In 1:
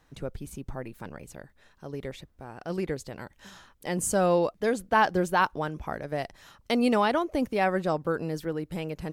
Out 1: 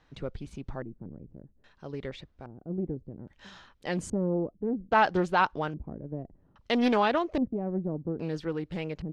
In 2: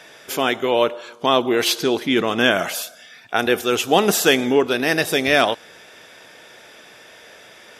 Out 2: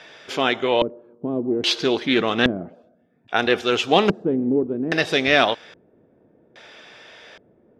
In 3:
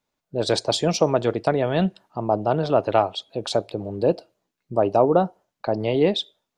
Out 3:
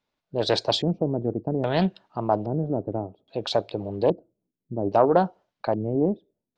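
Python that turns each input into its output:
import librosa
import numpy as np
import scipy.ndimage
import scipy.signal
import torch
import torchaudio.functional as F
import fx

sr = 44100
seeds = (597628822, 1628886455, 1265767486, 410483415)

y = fx.filter_lfo_lowpass(x, sr, shape='square', hz=0.61, low_hz=300.0, high_hz=4200.0, q=1.1)
y = fx.doppler_dist(y, sr, depth_ms=0.24)
y = F.gain(torch.from_numpy(y), -1.0).numpy()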